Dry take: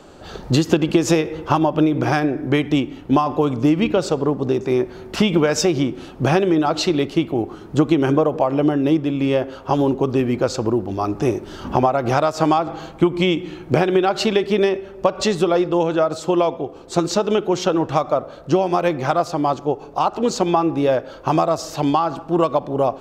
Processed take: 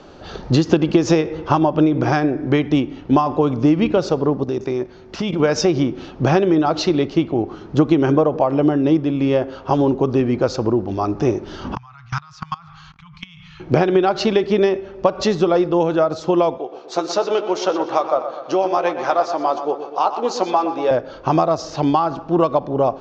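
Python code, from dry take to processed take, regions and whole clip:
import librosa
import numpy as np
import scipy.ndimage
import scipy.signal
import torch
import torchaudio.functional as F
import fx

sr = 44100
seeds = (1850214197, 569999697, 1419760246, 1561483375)

y = fx.chain(x, sr, fx.high_shelf(hz=5800.0, db=7.5),
    fx.level_steps(step_db=11), at=(4.44, 5.4))
y = fx.chain(y, sr, fx.ellip_bandstop(low_hz=150.0, high_hz=1100.0, order=3, stop_db=50),
    fx.level_steps(step_db=22), at=(11.75, 13.6))
y = fx.chain(y, sr, fx.highpass(hz=440.0, slope=12),
    fx.doubler(ms=16.0, db=-11.0),
    fx.echo_filtered(ms=122, feedback_pct=58, hz=4700.0, wet_db=-10.0), at=(16.58, 20.91))
y = scipy.signal.sosfilt(scipy.signal.butter(8, 6300.0, 'lowpass', fs=sr, output='sos'), y)
y = fx.dynamic_eq(y, sr, hz=2900.0, q=0.88, threshold_db=-38.0, ratio=4.0, max_db=-4)
y = F.gain(torch.from_numpy(y), 1.5).numpy()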